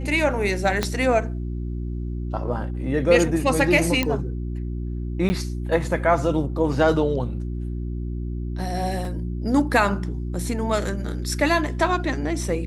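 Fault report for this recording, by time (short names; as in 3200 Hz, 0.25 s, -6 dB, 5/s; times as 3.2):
hum 60 Hz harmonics 6 -28 dBFS
0.83 pop -8 dBFS
4.03 pop -8 dBFS
5.29–5.3 gap 10 ms
9.05 gap 2 ms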